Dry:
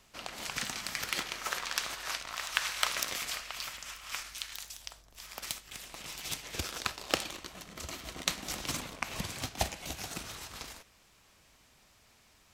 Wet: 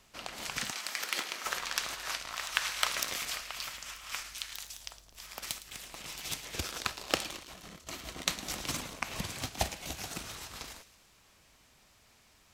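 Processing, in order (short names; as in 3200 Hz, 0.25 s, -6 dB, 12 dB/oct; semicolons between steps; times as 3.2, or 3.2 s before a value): 0.7–1.44 HPF 490 Hz -> 210 Hz 12 dB/oct; 7.42–7.87 negative-ratio compressor -52 dBFS, ratio -1; thin delay 0.11 s, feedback 56%, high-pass 3200 Hz, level -14 dB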